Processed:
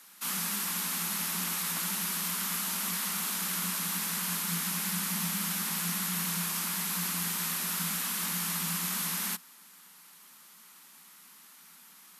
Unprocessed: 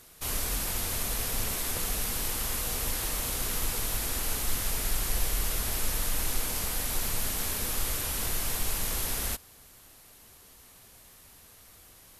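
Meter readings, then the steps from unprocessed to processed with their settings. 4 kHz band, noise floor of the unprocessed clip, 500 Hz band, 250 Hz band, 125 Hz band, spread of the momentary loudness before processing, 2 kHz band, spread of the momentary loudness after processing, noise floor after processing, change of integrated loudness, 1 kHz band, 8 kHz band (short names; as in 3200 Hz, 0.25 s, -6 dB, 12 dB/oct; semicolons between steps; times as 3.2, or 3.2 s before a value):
+0.5 dB, -55 dBFS, -10.5 dB, +4.0 dB, -3.0 dB, 0 LU, +1.5 dB, 0 LU, -55 dBFS, 0.0 dB, +1.0 dB, 0.0 dB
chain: resonant low shelf 630 Hz -10.5 dB, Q 1.5; frequency shift +160 Hz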